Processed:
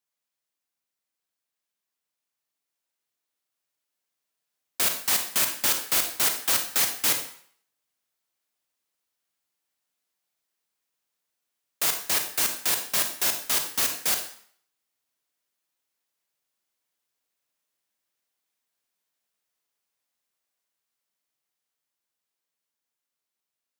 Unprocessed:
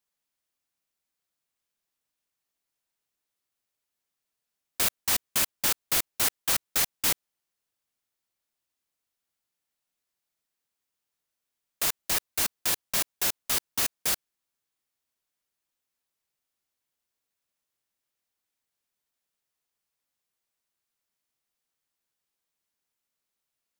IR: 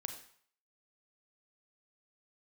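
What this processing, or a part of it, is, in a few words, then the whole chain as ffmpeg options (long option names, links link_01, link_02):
far laptop microphone: -filter_complex "[1:a]atrim=start_sample=2205[link_01];[0:a][link_01]afir=irnorm=-1:irlink=0,highpass=frequency=190:poles=1,dynaudnorm=framelen=670:gausssize=11:maxgain=4.5dB"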